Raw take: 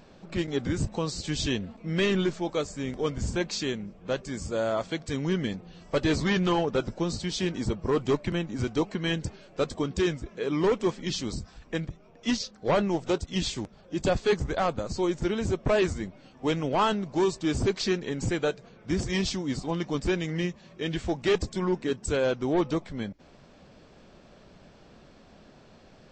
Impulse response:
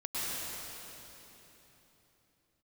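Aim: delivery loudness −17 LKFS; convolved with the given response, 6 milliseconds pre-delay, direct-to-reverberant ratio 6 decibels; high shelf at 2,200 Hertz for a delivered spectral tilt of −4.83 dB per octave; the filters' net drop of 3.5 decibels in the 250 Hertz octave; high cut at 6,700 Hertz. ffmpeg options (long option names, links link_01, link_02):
-filter_complex "[0:a]lowpass=6700,equalizer=frequency=250:width_type=o:gain=-5.5,highshelf=frequency=2200:gain=-3,asplit=2[link_01][link_02];[1:a]atrim=start_sample=2205,adelay=6[link_03];[link_02][link_03]afir=irnorm=-1:irlink=0,volume=-12.5dB[link_04];[link_01][link_04]amix=inputs=2:normalize=0,volume=13dB"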